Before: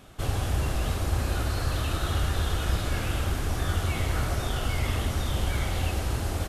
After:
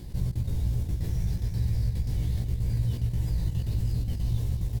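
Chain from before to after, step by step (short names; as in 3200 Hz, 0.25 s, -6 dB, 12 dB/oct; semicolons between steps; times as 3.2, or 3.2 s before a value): passive tone stack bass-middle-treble 10-0-1; step gate "xxxxx.x.x" 188 bpm -24 dB; doubler 23 ms -3.5 dB; on a send: echo 0.381 s -10.5 dB; on the sum: speed mistake 33 rpm record played at 45 rpm; fast leveller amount 50%; gain +4.5 dB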